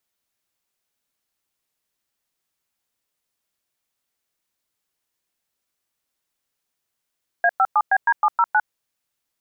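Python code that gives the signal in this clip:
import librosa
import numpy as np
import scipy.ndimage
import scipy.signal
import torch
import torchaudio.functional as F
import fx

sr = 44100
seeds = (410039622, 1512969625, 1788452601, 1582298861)

y = fx.dtmf(sr, digits='A57BD709', tone_ms=53, gap_ms=105, level_db=-16.0)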